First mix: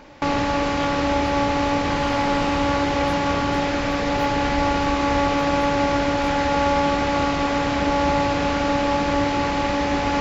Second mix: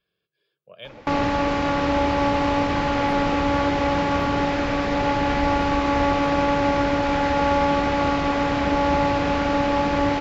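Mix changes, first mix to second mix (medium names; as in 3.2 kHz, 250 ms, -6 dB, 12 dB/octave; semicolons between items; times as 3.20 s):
first sound: entry +0.85 s; master: add treble shelf 6.6 kHz -12 dB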